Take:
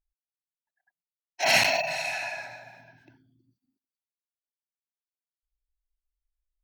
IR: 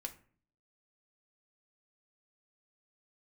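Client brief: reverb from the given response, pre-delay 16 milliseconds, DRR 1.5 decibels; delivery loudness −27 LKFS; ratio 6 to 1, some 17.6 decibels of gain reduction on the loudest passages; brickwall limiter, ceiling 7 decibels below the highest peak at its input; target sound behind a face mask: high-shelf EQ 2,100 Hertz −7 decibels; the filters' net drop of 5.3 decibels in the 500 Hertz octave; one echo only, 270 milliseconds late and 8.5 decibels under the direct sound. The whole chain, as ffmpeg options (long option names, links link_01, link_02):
-filter_complex "[0:a]equalizer=frequency=500:width_type=o:gain=-7.5,acompressor=threshold=-37dB:ratio=6,alimiter=level_in=7dB:limit=-24dB:level=0:latency=1,volume=-7dB,aecho=1:1:270:0.376,asplit=2[link_01][link_02];[1:a]atrim=start_sample=2205,adelay=16[link_03];[link_02][link_03]afir=irnorm=-1:irlink=0,volume=1dB[link_04];[link_01][link_04]amix=inputs=2:normalize=0,highshelf=frequency=2100:gain=-7,volume=14.5dB"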